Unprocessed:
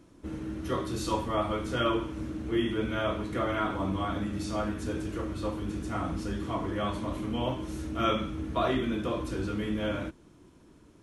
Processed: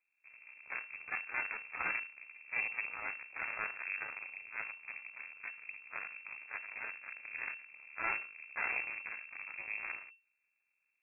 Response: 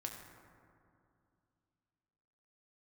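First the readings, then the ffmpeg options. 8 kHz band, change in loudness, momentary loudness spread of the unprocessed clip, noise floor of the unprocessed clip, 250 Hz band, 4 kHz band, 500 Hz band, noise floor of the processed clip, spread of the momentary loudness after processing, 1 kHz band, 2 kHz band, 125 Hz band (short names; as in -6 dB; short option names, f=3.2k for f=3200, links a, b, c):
under -30 dB, -8.0 dB, 7 LU, -57 dBFS, -34.0 dB, under -35 dB, -25.0 dB, -82 dBFS, 11 LU, -13.0 dB, +3.5 dB, under -30 dB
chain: -af "aeval=exprs='max(val(0),0)':c=same,aeval=exprs='0.188*(cos(1*acos(clip(val(0)/0.188,-1,1)))-cos(1*PI/2))+0.0237*(cos(7*acos(clip(val(0)/0.188,-1,1)))-cos(7*PI/2))':c=same,lowpass=f=2.3k:t=q:w=0.5098,lowpass=f=2.3k:t=q:w=0.6013,lowpass=f=2.3k:t=q:w=0.9,lowpass=f=2.3k:t=q:w=2.563,afreqshift=-2700,volume=-4.5dB"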